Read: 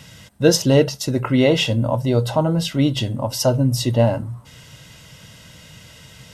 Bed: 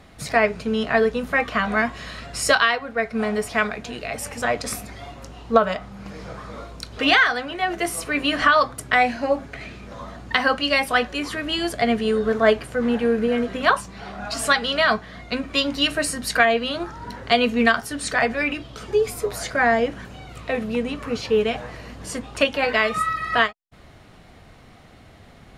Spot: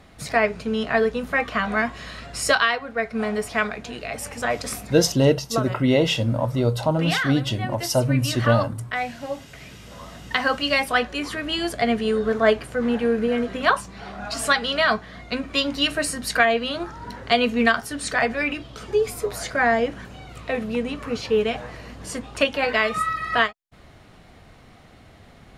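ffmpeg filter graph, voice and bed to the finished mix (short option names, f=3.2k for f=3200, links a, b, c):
-filter_complex "[0:a]adelay=4500,volume=-3dB[a];[1:a]volume=6.5dB,afade=t=out:st=4.91:d=0.45:silence=0.421697,afade=t=in:st=9.51:d=1.19:silence=0.398107[b];[a][b]amix=inputs=2:normalize=0"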